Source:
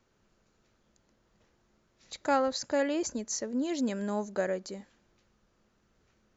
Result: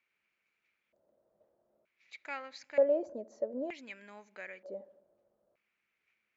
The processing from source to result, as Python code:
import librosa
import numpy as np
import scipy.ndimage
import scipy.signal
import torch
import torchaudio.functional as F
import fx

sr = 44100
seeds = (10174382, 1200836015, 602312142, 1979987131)

p1 = fx.low_shelf(x, sr, hz=410.0, db=9.0)
p2 = p1 + fx.echo_filtered(p1, sr, ms=73, feedback_pct=65, hz=1100.0, wet_db=-21.0, dry=0)
p3 = fx.filter_lfo_bandpass(p2, sr, shape='square', hz=0.54, low_hz=600.0, high_hz=2300.0, q=6.8)
y = F.gain(torch.from_numpy(p3), 5.5).numpy()